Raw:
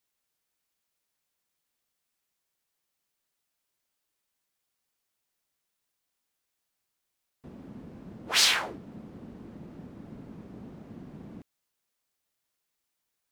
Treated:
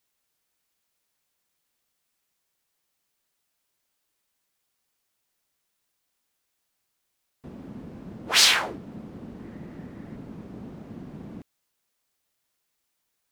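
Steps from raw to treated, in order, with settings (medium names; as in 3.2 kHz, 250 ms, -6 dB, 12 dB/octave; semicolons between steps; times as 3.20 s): 9.39–10.16 s: peaking EQ 1.9 kHz +8.5 dB 0.35 oct; trim +4.5 dB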